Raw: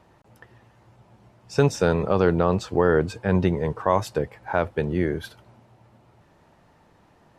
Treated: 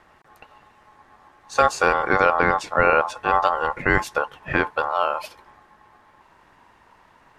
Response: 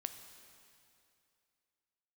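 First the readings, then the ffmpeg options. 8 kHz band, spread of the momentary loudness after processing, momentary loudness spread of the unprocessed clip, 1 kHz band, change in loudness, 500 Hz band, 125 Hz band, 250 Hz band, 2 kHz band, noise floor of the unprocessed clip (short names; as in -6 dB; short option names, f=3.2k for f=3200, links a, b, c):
+2.5 dB, 9 LU, 9 LU, +8.5 dB, +2.5 dB, -1.0 dB, -9.5 dB, -6.5 dB, +10.5 dB, -58 dBFS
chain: -af "asubboost=boost=3.5:cutoff=66,aeval=exprs='val(0)*sin(2*PI*960*n/s)':c=same,volume=5dB"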